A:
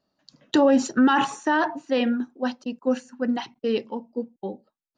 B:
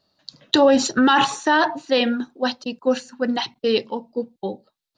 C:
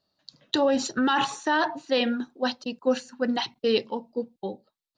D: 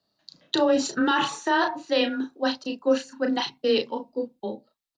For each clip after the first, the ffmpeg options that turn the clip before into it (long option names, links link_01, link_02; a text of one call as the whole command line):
ffmpeg -i in.wav -filter_complex "[0:a]equalizer=frequency=100:width_type=o:width=0.67:gain=5,equalizer=frequency=250:width_type=o:width=0.67:gain=-5,equalizer=frequency=4000:width_type=o:width=0.67:gain=10,asplit=2[link_01][link_02];[link_02]alimiter=limit=-14dB:level=0:latency=1:release=109,volume=-1dB[link_03];[link_01][link_03]amix=inputs=2:normalize=0" out.wav
ffmpeg -i in.wav -af "dynaudnorm=framelen=310:gausssize=7:maxgain=6dB,volume=-8dB" out.wav
ffmpeg -i in.wav -filter_complex "[0:a]afreqshift=16,asplit=2[link_01][link_02];[link_02]adelay=34,volume=-5.5dB[link_03];[link_01][link_03]amix=inputs=2:normalize=0" out.wav